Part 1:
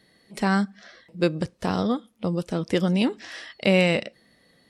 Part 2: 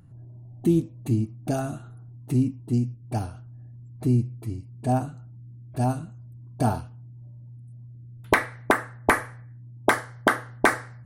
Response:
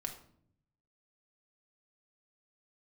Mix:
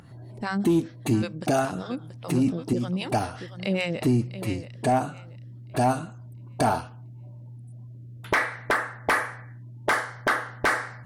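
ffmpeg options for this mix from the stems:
-filter_complex "[0:a]acrossover=split=550[s0][s1];[s0]aeval=exprs='val(0)*(1-1/2+1/2*cos(2*PI*5.1*n/s))':c=same[s2];[s1]aeval=exprs='val(0)*(1-1/2-1/2*cos(2*PI*5.1*n/s))':c=same[s3];[s2][s3]amix=inputs=2:normalize=0,volume=0.75,asplit=3[s4][s5][s6];[s5]volume=0.251[s7];[1:a]asplit=2[s8][s9];[s9]highpass=f=720:p=1,volume=8.91,asoftclip=type=tanh:threshold=0.631[s10];[s8][s10]amix=inputs=2:normalize=0,lowpass=f=4700:p=1,volume=0.501,volume=1.19[s11];[s6]apad=whole_len=487547[s12];[s11][s12]sidechaincompress=threshold=0.02:ratio=4:attack=7.2:release=111[s13];[s7]aecho=0:1:680|1360|2040|2720|3400:1|0.32|0.102|0.0328|0.0105[s14];[s4][s13][s14]amix=inputs=3:normalize=0,alimiter=limit=0.2:level=0:latency=1:release=374"

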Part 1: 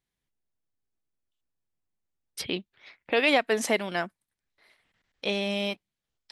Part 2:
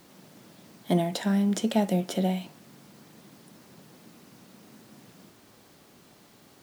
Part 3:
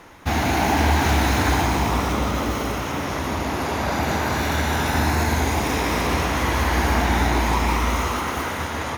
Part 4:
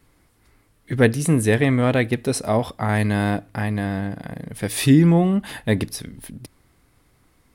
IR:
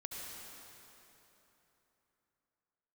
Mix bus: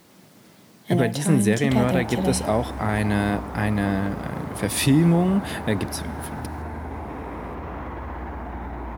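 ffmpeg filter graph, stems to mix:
-filter_complex "[1:a]volume=1.06[s0];[2:a]lowpass=1300,alimiter=limit=0.106:level=0:latency=1,adelay=1450,volume=0.531[s1];[3:a]highpass=f=97:w=0.5412,highpass=f=97:w=1.3066,alimiter=limit=0.282:level=0:latency=1:release=388,volume=1.12,asplit=2[s2][s3];[s3]volume=0.119[s4];[4:a]atrim=start_sample=2205[s5];[s4][s5]afir=irnorm=-1:irlink=0[s6];[s0][s1][s2][s6]amix=inputs=4:normalize=0,acrusher=bits=10:mix=0:aa=0.000001"

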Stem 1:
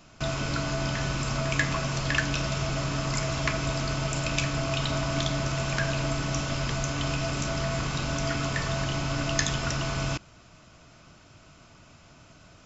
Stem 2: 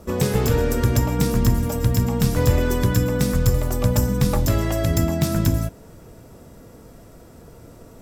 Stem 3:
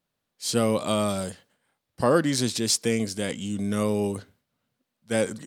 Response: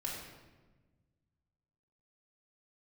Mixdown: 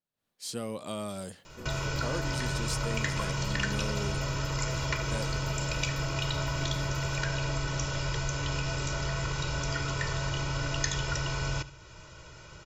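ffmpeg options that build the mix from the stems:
-filter_complex "[0:a]aecho=1:1:2.1:0.87,adelay=1450,volume=1.26,asplit=2[s0][s1];[s1]volume=0.133[s2];[1:a]asoftclip=type=tanh:threshold=0.0944,adelay=1500,volume=0.158,asplit=2[s3][s4];[s4]volume=0.299[s5];[2:a]dynaudnorm=f=140:g=3:m=5.96,volume=0.168[s6];[s2][s5]amix=inputs=2:normalize=0,aecho=0:1:73|146|219|292|365:1|0.32|0.102|0.0328|0.0105[s7];[s0][s3][s6][s7]amix=inputs=4:normalize=0,acompressor=threshold=0.00891:ratio=1.5"

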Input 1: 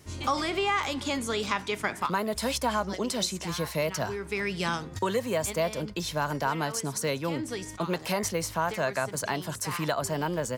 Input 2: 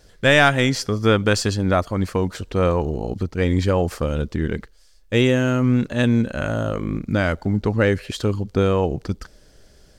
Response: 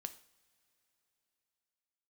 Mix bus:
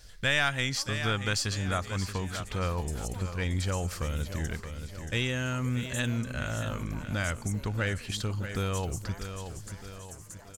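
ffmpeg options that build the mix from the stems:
-filter_complex "[0:a]highshelf=f=5200:t=q:w=3:g=11,adelay=500,volume=0.141,asplit=2[s0][s1];[s1]volume=0.266[s2];[1:a]equalizer=f=370:w=0.45:g=-13.5,volume=1.33,asplit=3[s3][s4][s5];[s4]volume=0.251[s6];[s5]apad=whole_len=488241[s7];[s0][s7]sidechaingate=range=0.251:threshold=0.0158:ratio=16:detection=peak[s8];[s2][s6]amix=inputs=2:normalize=0,aecho=0:1:628|1256|1884|2512|3140:1|0.38|0.144|0.0549|0.0209[s9];[s8][s3][s9]amix=inputs=3:normalize=0,acompressor=threshold=0.0112:ratio=1.5"

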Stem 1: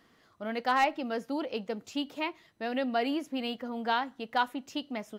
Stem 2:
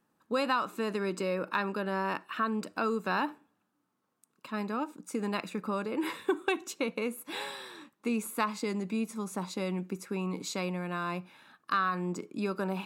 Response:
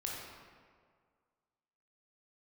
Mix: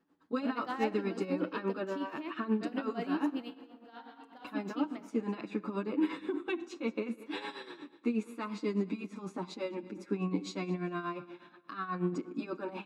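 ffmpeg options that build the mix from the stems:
-filter_complex "[0:a]volume=0.282,asplit=3[s0][s1][s2];[s1]volume=0.335[s3];[s2]volume=0.133[s4];[1:a]lowpass=4300,alimiter=level_in=1.26:limit=0.0631:level=0:latency=1:release=41,volume=0.794,asplit=2[s5][s6];[s6]adelay=7.7,afreqshift=-0.67[s7];[s5][s7]amix=inputs=2:normalize=1,volume=1.26,asplit=4[s8][s9][s10][s11];[s9]volume=0.178[s12];[s10]volume=0.126[s13];[s11]apad=whole_len=228539[s14];[s0][s14]sidechaingate=range=0.0224:threshold=0.001:ratio=16:detection=peak[s15];[2:a]atrim=start_sample=2205[s16];[s3][s12]amix=inputs=2:normalize=0[s17];[s17][s16]afir=irnorm=-1:irlink=0[s18];[s4][s13]amix=inputs=2:normalize=0,aecho=0:1:199|398|597|796|995:1|0.34|0.116|0.0393|0.0134[s19];[s15][s8][s18][s19]amix=inputs=4:normalize=0,equalizer=f=300:t=o:w=0.49:g=11.5,tremolo=f=8.3:d=0.72"

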